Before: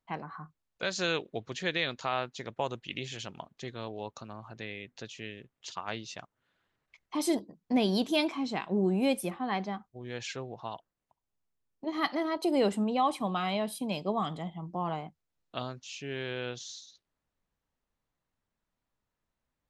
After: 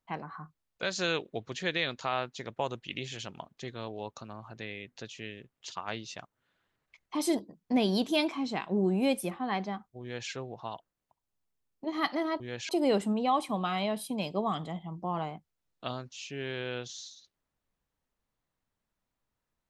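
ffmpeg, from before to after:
ffmpeg -i in.wav -filter_complex "[0:a]asplit=3[link_01][link_02][link_03];[link_01]atrim=end=12.402[link_04];[link_02]atrim=start=10.018:end=10.312[link_05];[link_03]atrim=start=12.398[link_06];[link_04][link_05]acrossfade=duration=0.004:curve1=hsin:curve2=hsin[link_07];[link_07][link_06]acrossfade=duration=0.004:curve1=hsin:curve2=hsin" out.wav

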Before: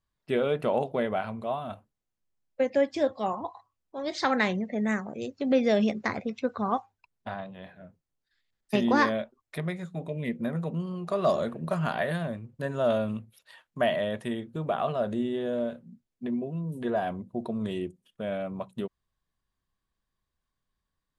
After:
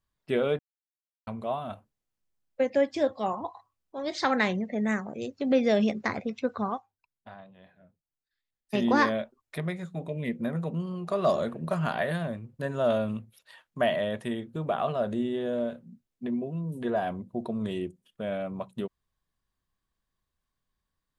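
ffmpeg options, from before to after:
ffmpeg -i in.wav -filter_complex "[0:a]asplit=5[link_01][link_02][link_03][link_04][link_05];[link_01]atrim=end=0.59,asetpts=PTS-STARTPTS,afade=type=out:start_time=0.586:duration=0.004:curve=hsin[link_06];[link_02]atrim=start=0.59:end=1.27,asetpts=PTS-STARTPTS,volume=0[link_07];[link_03]atrim=start=1.27:end=6.79,asetpts=PTS-STARTPTS,afade=type=in:duration=0.004:curve=hsin,afade=type=out:start_time=5.36:duration=0.16:silence=0.298538[link_08];[link_04]atrim=start=6.79:end=8.66,asetpts=PTS-STARTPTS,volume=-10.5dB[link_09];[link_05]atrim=start=8.66,asetpts=PTS-STARTPTS,afade=type=in:duration=0.16:silence=0.298538[link_10];[link_06][link_07][link_08][link_09][link_10]concat=n=5:v=0:a=1" out.wav

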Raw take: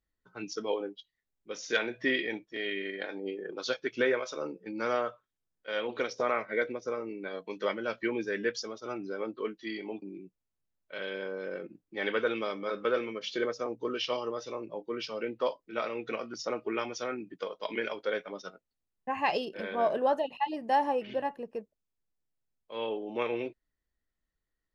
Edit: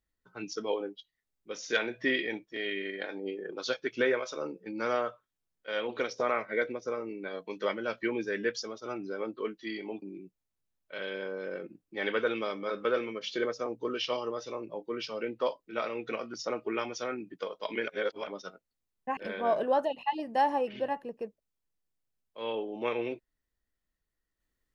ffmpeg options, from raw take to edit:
ffmpeg -i in.wav -filter_complex "[0:a]asplit=4[link_01][link_02][link_03][link_04];[link_01]atrim=end=17.882[link_05];[link_02]atrim=start=17.878:end=18.272,asetpts=PTS-STARTPTS,areverse[link_06];[link_03]atrim=start=18.268:end=19.172[link_07];[link_04]atrim=start=19.508[link_08];[link_05][link_06]acrossfade=duration=0.004:curve1=hsin:curve2=hsin[link_09];[link_09][link_07]acrossfade=duration=0.004:curve1=hsin:curve2=hsin[link_10];[link_10][link_08]acrossfade=duration=0.004:curve1=hsin:curve2=hsin" out.wav

